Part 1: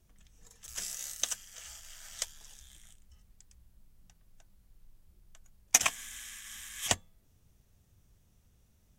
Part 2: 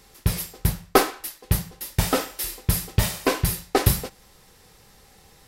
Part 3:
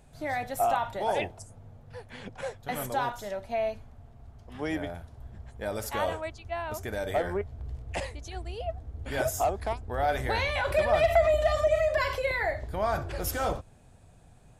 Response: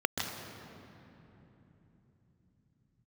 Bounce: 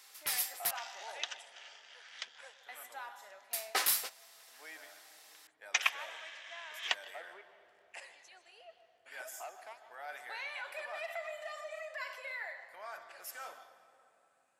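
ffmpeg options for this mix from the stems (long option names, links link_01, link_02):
-filter_complex "[0:a]lowpass=frequency=4100:width=0.5412,lowpass=frequency=4100:width=1.3066,volume=0.5dB,asplit=2[link_01][link_02];[link_02]volume=-23dB[link_03];[1:a]asoftclip=type=tanh:threshold=-12.5dB,volume=-2dB,asplit=3[link_04][link_05][link_06];[link_04]atrim=end=0.71,asetpts=PTS-STARTPTS,afade=type=out:start_time=0.706:duration=0.004:curve=hsin[link_07];[link_05]atrim=start=0.71:end=3.53,asetpts=PTS-STARTPTS,volume=0[link_08];[link_06]atrim=start=3.53,asetpts=PTS-STARTPTS,afade=type=in:duration=0.004:curve=hsin[link_09];[link_07][link_08][link_09]concat=n=3:v=0:a=1[link_10];[2:a]volume=-13.5dB,asplit=2[link_11][link_12];[link_12]volume=-12.5dB[link_13];[3:a]atrim=start_sample=2205[link_14];[link_03][link_13]amix=inputs=2:normalize=0[link_15];[link_15][link_14]afir=irnorm=-1:irlink=0[link_16];[link_01][link_10][link_11][link_16]amix=inputs=4:normalize=0,highpass=1200"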